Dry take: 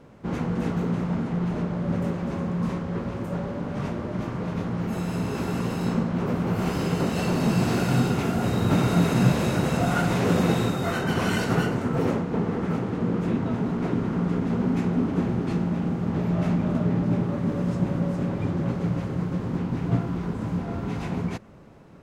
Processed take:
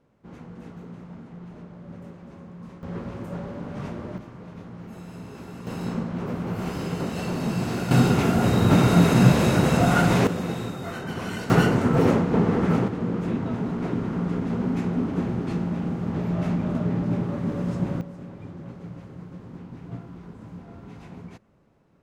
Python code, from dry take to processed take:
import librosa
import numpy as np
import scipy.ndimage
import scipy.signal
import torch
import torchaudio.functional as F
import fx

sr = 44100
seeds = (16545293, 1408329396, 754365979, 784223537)

y = fx.gain(x, sr, db=fx.steps((0.0, -15.0), (2.83, -4.0), (4.18, -12.0), (5.67, -4.0), (7.91, 4.0), (10.27, -7.0), (11.5, 5.0), (12.88, -1.5), (18.01, -13.0)))